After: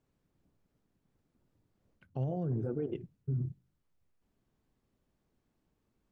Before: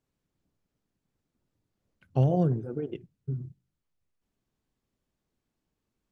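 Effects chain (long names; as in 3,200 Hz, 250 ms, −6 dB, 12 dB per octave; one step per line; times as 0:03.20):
high-shelf EQ 2,300 Hz −8 dB
reversed playback
downward compressor 6 to 1, threshold −32 dBFS, peak gain reduction 12.5 dB
reversed playback
brickwall limiter −31.5 dBFS, peak gain reduction 6 dB
level +5 dB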